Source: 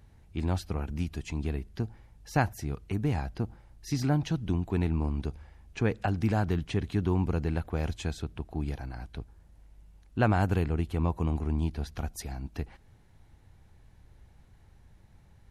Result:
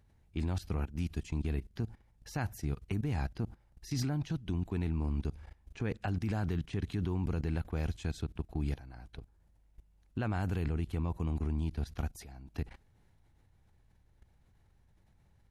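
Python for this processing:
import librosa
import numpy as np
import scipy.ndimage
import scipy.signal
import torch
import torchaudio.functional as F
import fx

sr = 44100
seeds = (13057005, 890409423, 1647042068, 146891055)

y = fx.level_steps(x, sr, step_db=17)
y = fx.dynamic_eq(y, sr, hz=690.0, q=0.7, threshold_db=-51.0, ratio=4.0, max_db=-4)
y = F.gain(torch.from_numpy(y), 2.5).numpy()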